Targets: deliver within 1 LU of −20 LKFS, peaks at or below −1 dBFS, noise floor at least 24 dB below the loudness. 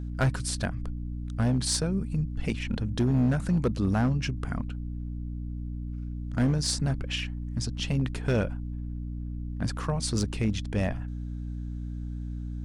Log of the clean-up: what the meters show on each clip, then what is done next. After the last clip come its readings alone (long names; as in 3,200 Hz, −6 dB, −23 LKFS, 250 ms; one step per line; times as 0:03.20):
share of clipped samples 0.9%; peaks flattened at −18.5 dBFS; mains hum 60 Hz; hum harmonics up to 300 Hz; level of the hum −32 dBFS; integrated loudness −30.0 LKFS; sample peak −18.5 dBFS; target loudness −20.0 LKFS
→ clipped peaks rebuilt −18.5 dBFS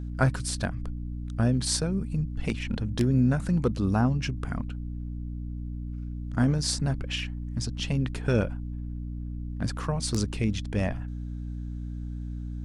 share of clipped samples 0.0%; mains hum 60 Hz; hum harmonics up to 300 Hz; level of the hum −32 dBFS
→ mains-hum notches 60/120/180/240/300 Hz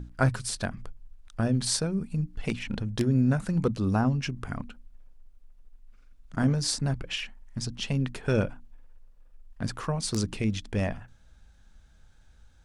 mains hum none found; integrated loudness −29.0 LKFS; sample peak −10.5 dBFS; target loudness −20.0 LKFS
→ level +9 dB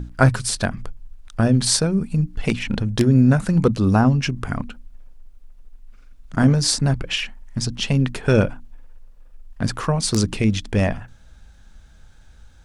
integrated loudness −20.0 LKFS; sample peak −1.5 dBFS; background noise floor −47 dBFS